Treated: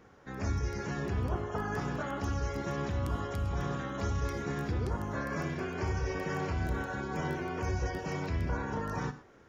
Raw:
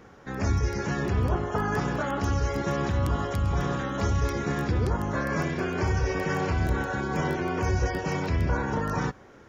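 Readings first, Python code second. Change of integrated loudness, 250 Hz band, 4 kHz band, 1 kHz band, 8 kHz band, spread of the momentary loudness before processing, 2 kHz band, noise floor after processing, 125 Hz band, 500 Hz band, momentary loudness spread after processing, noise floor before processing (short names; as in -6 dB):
-7.0 dB, -7.0 dB, -7.0 dB, -7.0 dB, n/a, 2 LU, -7.0 dB, -57 dBFS, -7.0 dB, -7.0 dB, 2 LU, -51 dBFS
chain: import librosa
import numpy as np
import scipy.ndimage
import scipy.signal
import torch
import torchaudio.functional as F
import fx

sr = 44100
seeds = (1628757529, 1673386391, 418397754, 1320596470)

y = fx.rev_gated(x, sr, seeds[0], gate_ms=140, shape='flat', drr_db=11.0)
y = y * librosa.db_to_amplitude(-7.5)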